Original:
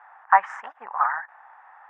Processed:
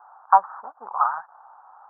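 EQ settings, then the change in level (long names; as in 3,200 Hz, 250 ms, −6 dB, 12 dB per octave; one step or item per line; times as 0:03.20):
Butterworth low-pass 1,400 Hz 72 dB per octave
+1.5 dB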